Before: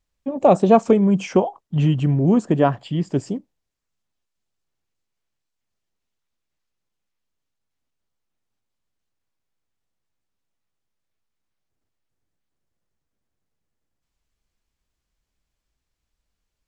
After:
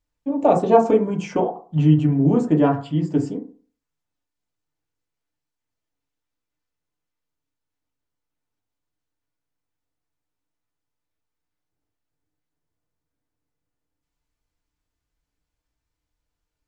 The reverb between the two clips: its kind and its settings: FDN reverb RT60 0.41 s, low-frequency decay 1×, high-frequency decay 0.3×, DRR -0.5 dB; gain -5 dB

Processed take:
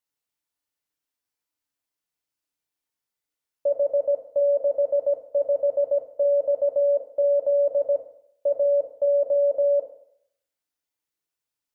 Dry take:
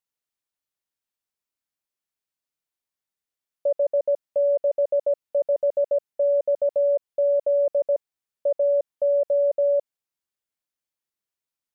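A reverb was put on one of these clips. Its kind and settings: FDN reverb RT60 0.68 s, low-frequency decay 0.85×, high-frequency decay 0.95×, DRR 0 dB; gain -1 dB

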